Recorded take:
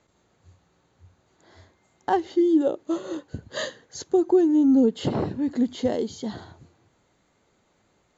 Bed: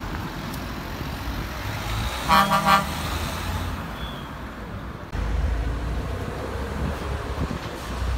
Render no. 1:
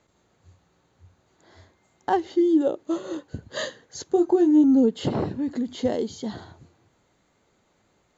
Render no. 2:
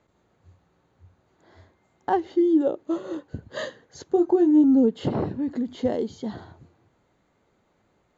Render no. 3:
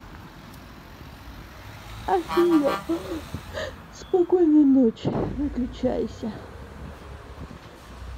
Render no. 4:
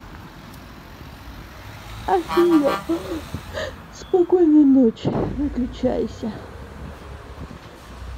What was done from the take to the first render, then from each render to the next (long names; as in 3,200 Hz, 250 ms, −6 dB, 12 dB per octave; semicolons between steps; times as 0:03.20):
0:04.13–0:04.64: double-tracking delay 23 ms −6 dB; 0:05.39–0:05.79: downward compressor, threshold −22 dBFS
high-shelf EQ 3,700 Hz −11.5 dB
mix in bed −12 dB
level +3.5 dB